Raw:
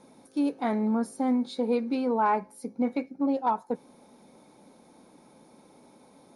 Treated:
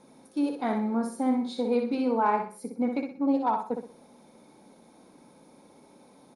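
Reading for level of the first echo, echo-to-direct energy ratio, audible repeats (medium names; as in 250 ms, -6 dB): -5.5 dB, -5.0 dB, 4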